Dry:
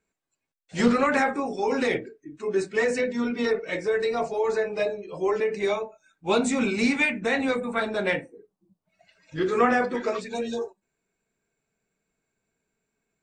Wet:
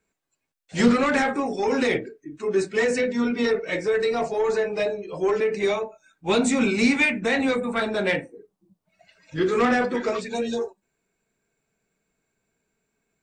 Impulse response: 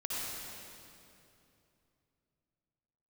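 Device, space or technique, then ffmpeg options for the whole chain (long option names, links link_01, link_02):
one-band saturation: -filter_complex "[0:a]acrossover=split=400|2000[link_01][link_02][link_03];[link_02]asoftclip=type=tanh:threshold=-25dB[link_04];[link_01][link_04][link_03]amix=inputs=3:normalize=0,volume=3.5dB"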